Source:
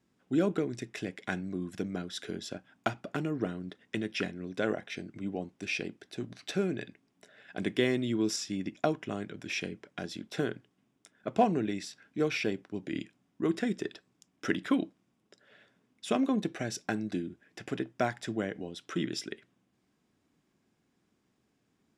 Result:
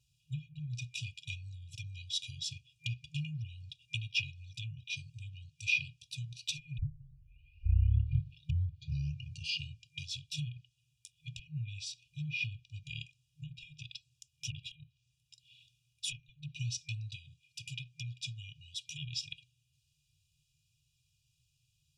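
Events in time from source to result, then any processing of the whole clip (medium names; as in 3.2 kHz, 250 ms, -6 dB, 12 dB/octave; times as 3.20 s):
6.78 s: tape start 3.20 s
17.15–18.86 s: bass shelf 130 Hz -9 dB
whole clip: low-pass that closes with the level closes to 1 kHz, closed at -24.5 dBFS; FFT band-reject 160–2400 Hz; comb 2.1 ms, depth 74%; trim +3.5 dB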